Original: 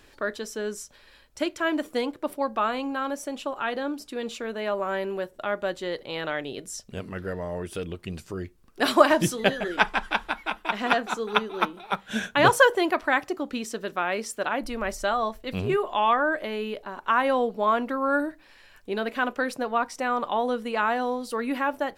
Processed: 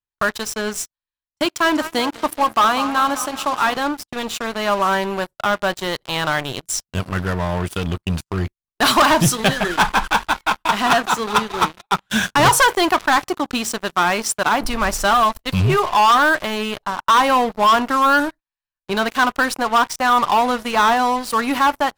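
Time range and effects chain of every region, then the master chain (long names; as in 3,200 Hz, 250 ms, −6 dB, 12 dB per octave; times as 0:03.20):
0:01.45–0:03.77: high-pass filter 120 Hz + feedback echo with a swinging delay time 195 ms, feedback 66%, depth 90 cents, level −15 dB
whole clip: noise gate −39 dBFS, range −27 dB; octave-band graphic EQ 125/250/500/1,000/2,000 Hz +5/−6/−11/+5/−5 dB; leveller curve on the samples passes 5; level −3.5 dB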